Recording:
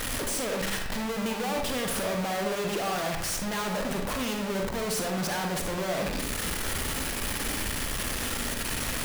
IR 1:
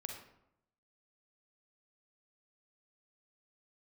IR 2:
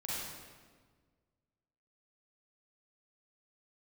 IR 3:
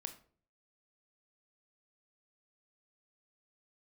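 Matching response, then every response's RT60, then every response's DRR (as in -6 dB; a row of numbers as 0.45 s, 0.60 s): 1; 0.80 s, 1.6 s, 0.45 s; 2.5 dB, -8.0 dB, 7.5 dB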